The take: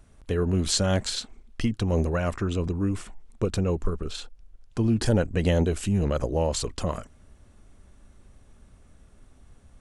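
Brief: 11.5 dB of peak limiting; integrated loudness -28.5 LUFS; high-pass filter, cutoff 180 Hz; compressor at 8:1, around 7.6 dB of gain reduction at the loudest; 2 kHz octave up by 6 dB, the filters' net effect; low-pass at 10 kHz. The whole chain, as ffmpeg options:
-af "highpass=180,lowpass=10000,equalizer=f=2000:t=o:g=8,acompressor=threshold=0.0447:ratio=8,volume=2.37,alimiter=limit=0.15:level=0:latency=1"

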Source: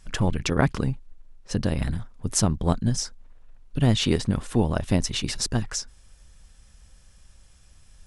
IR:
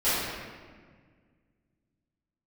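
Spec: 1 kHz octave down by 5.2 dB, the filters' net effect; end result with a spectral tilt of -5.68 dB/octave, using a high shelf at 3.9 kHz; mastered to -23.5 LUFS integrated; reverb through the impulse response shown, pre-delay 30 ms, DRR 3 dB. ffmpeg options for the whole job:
-filter_complex "[0:a]equalizer=f=1000:t=o:g=-7,highshelf=f=3900:g=-4.5,asplit=2[s0][s1];[1:a]atrim=start_sample=2205,adelay=30[s2];[s1][s2]afir=irnorm=-1:irlink=0,volume=0.133[s3];[s0][s3]amix=inputs=2:normalize=0,volume=1.19"

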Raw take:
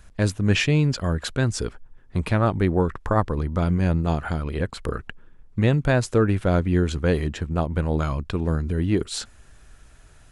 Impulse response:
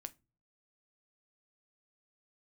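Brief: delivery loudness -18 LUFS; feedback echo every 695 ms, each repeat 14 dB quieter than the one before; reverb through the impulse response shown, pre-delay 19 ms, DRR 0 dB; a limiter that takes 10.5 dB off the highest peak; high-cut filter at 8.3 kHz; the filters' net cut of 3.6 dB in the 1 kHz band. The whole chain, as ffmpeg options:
-filter_complex "[0:a]lowpass=8300,equalizer=f=1000:t=o:g=-5,alimiter=limit=0.141:level=0:latency=1,aecho=1:1:695|1390:0.2|0.0399,asplit=2[s0][s1];[1:a]atrim=start_sample=2205,adelay=19[s2];[s1][s2]afir=irnorm=-1:irlink=0,volume=1.68[s3];[s0][s3]amix=inputs=2:normalize=0,volume=2.24"

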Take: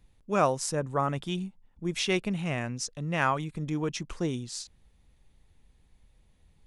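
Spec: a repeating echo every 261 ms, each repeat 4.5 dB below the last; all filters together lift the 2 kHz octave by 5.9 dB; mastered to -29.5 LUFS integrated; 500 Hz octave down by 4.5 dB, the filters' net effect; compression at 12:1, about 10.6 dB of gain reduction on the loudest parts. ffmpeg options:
-af "equalizer=f=500:t=o:g=-6.5,equalizer=f=2000:t=o:g=8,acompressor=threshold=0.0355:ratio=12,aecho=1:1:261|522|783|1044|1305|1566|1827|2088|2349:0.596|0.357|0.214|0.129|0.0772|0.0463|0.0278|0.0167|0.01,volume=1.58"

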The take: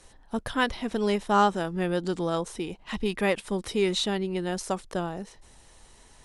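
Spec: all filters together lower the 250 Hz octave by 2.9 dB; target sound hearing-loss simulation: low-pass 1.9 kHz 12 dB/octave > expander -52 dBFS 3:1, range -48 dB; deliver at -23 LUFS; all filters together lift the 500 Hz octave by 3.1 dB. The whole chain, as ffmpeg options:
-af "lowpass=1900,equalizer=f=250:t=o:g=-7,equalizer=f=500:t=o:g=6.5,agate=range=0.00398:threshold=0.00251:ratio=3,volume=1.68"

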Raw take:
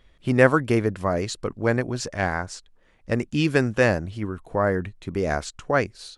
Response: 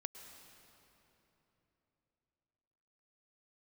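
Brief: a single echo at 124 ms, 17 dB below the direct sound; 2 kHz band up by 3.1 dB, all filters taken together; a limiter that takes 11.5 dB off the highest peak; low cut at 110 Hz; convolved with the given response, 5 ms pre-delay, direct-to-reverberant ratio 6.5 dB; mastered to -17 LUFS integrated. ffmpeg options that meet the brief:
-filter_complex "[0:a]highpass=110,equalizer=f=2000:t=o:g=4,alimiter=limit=0.224:level=0:latency=1,aecho=1:1:124:0.141,asplit=2[s0][s1];[1:a]atrim=start_sample=2205,adelay=5[s2];[s1][s2]afir=irnorm=-1:irlink=0,volume=0.668[s3];[s0][s3]amix=inputs=2:normalize=0,volume=2.99"

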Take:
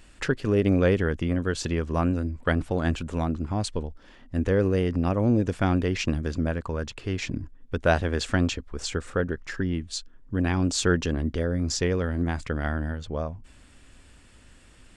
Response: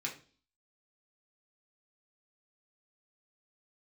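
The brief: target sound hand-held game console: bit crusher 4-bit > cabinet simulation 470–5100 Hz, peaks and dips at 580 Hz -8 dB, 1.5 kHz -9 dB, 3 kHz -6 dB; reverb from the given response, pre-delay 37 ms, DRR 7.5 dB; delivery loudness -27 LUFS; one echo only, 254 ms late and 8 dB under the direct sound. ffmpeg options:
-filter_complex "[0:a]aecho=1:1:254:0.398,asplit=2[s0][s1];[1:a]atrim=start_sample=2205,adelay=37[s2];[s1][s2]afir=irnorm=-1:irlink=0,volume=0.335[s3];[s0][s3]amix=inputs=2:normalize=0,acrusher=bits=3:mix=0:aa=0.000001,highpass=470,equalizer=f=580:t=q:w=4:g=-8,equalizer=f=1500:t=q:w=4:g=-9,equalizer=f=3000:t=q:w=4:g=-6,lowpass=f=5100:w=0.5412,lowpass=f=5100:w=1.3066,volume=1.58"

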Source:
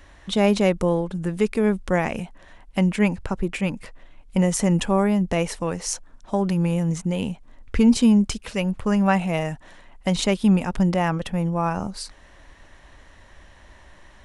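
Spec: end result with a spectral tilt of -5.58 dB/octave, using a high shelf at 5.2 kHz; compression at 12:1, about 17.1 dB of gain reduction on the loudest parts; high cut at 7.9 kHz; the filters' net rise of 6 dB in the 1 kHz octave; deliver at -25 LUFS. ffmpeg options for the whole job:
-af "lowpass=7900,equalizer=f=1000:t=o:g=8,highshelf=f=5200:g=-5,acompressor=threshold=0.0355:ratio=12,volume=3.16"

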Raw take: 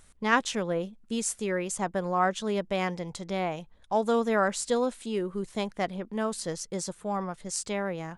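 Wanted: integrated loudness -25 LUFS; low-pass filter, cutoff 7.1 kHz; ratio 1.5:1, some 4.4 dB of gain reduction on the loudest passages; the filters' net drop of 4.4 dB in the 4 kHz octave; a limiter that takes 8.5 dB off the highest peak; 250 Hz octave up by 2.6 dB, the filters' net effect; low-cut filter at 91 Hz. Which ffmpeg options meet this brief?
-af "highpass=91,lowpass=7100,equalizer=f=250:t=o:g=3.5,equalizer=f=4000:t=o:g=-5.5,acompressor=threshold=0.0282:ratio=1.5,volume=2.82,alimiter=limit=0.188:level=0:latency=1"

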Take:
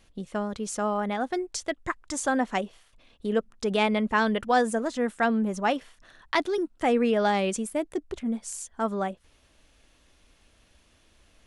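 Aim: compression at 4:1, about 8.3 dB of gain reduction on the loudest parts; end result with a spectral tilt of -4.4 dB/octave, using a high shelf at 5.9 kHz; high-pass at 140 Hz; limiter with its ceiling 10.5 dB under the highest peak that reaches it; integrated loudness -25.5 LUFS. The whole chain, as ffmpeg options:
-af "highpass=140,highshelf=f=5900:g=-6,acompressor=threshold=0.0355:ratio=4,volume=3.16,alimiter=limit=0.178:level=0:latency=1"

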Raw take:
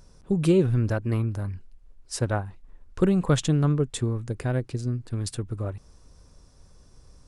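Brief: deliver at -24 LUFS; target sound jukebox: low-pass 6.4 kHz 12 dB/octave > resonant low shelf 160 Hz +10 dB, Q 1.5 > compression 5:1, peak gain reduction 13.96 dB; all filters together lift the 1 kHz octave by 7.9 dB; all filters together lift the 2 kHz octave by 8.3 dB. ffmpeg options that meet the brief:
-af "lowpass=6400,lowshelf=f=160:t=q:w=1.5:g=10,equalizer=f=1000:t=o:g=8.5,equalizer=f=2000:t=o:g=8,acompressor=threshold=0.0562:ratio=5,volume=1.78"

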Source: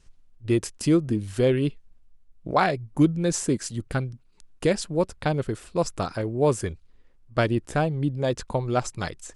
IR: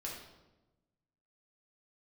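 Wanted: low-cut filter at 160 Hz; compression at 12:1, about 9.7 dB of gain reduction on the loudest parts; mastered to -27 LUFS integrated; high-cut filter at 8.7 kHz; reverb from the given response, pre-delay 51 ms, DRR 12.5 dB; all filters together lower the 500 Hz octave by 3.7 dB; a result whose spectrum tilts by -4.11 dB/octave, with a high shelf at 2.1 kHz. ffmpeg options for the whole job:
-filter_complex "[0:a]highpass=160,lowpass=8700,equalizer=f=500:t=o:g=-5,highshelf=f=2100:g=6.5,acompressor=threshold=0.0501:ratio=12,asplit=2[s0][s1];[1:a]atrim=start_sample=2205,adelay=51[s2];[s1][s2]afir=irnorm=-1:irlink=0,volume=0.251[s3];[s0][s3]amix=inputs=2:normalize=0,volume=1.88"

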